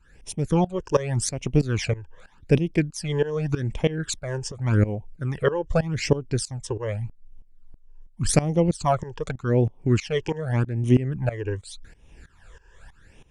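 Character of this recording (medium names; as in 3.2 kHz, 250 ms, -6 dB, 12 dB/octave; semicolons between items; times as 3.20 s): phasing stages 12, 0.85 Hz, lowest notch 210–1500 Hz; tremolo saw up 3.1 Hz, depth 90%; Opus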